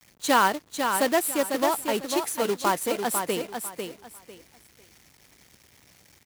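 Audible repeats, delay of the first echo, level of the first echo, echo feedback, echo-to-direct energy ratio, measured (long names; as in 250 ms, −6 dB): 3, 498 ms, −6.0 dB, 23%, −6.0 dB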